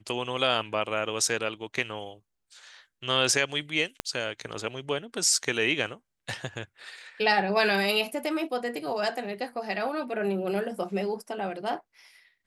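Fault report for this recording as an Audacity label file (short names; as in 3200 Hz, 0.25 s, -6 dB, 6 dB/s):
4.000000	4.000000	pop -13 dBFS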